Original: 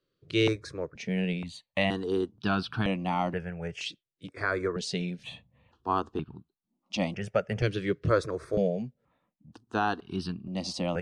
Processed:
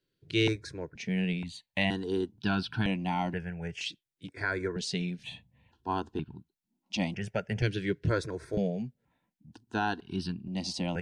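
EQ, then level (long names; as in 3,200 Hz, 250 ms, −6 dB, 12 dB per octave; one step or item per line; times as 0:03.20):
Butterworth band-reject 1,200 Hz, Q 3.7
parametric band 550 Hz −8 dB 0.68 octaves
0.0 dB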